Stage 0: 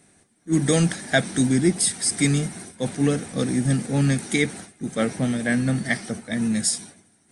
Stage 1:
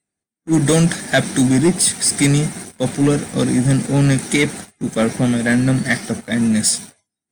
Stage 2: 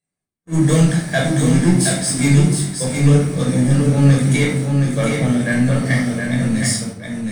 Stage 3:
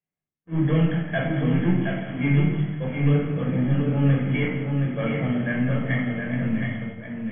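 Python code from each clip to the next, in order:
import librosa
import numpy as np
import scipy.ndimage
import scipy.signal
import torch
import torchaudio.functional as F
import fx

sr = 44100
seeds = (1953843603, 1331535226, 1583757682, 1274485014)

y1 = fx.noise_reduce_blind(x, sr, reduce_db=21)
y1 = fx.leveller(y1, sr, passes=2)
y2 = y1 + 10.0 ** (-5.0 / 20.0) * np.pad(y1, (int(719 * sr / 1000.0), 0))[:len(y1)]
y2 = fx.room_shoebox(y2, sr, seeds[0], volume_m3=880.0, walls='furnished', distance_m=5.6)
y2 = y2 * librosa.db_to_amplitude(-9.5)
y3 = fx.brickwall_lowpass(y2, sr, high_hz=3400.0)
y3 = fx.comb_fb(y3, sr, f0_hz=76.0, decay_s=1.7, harmonics='all', damping=0.0, mix_pct=60)
y3 = y3 + 10.0 ** (-13.0 / 20.0) * np.pad(y3, (int(164 * sr / 1000.0), 0))[:len(y3)]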